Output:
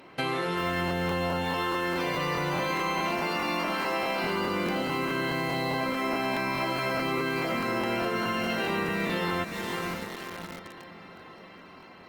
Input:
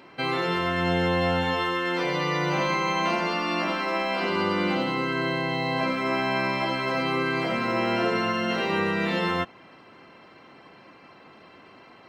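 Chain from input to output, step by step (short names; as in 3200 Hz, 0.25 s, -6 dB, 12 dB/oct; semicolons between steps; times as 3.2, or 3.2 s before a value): on a send: diffused feedback echo 0.486 s, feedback 56%, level -12.5 dB; on the sum: modulation noise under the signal 33 dB; in parallel at -3.5 dB: requantised 6-bit, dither none; on the sum: compressor, threshold -26 dBFS, peak gain reduction 10.5 dB; crackling interface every 0.21 s, samples 1024, repeat, from 0.86; Opus 24 kbps 48000 Hz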